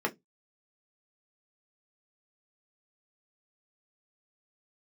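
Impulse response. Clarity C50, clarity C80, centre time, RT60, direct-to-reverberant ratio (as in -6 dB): 23.0 dB, 34.5 dB, 7 ms, 0.15 s, 1.0 dB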